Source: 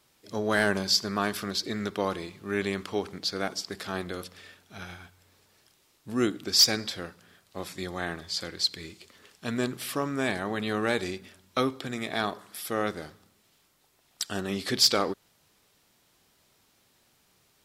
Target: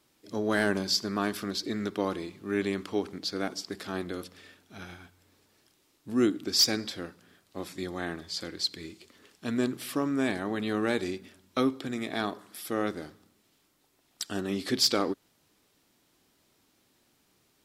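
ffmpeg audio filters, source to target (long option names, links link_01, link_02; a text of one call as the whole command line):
ffmpeg -i in.wav -af "equalizer=frequency=290:width=1.8:gain=8,volume=-3.5dB" out.wav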